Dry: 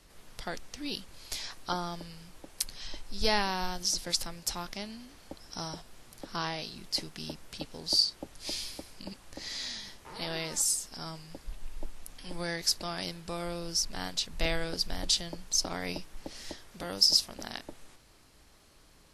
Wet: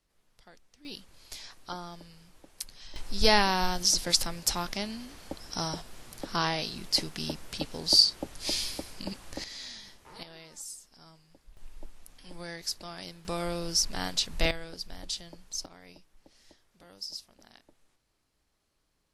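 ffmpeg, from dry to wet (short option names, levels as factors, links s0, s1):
-af "asetnsamples=n=441:p=0,asendcmd='0.85 volume volume -6dB;2.96 volume volume 5.5dB;9.44 volume volume -4.5dB;10.23 volume volume -14dB;11.57 volume volume -6dB;13.25 volume volume 3.5dB;14.51 volume volume -8dB;15.66 volume volume -16.5dB',volume=0.126"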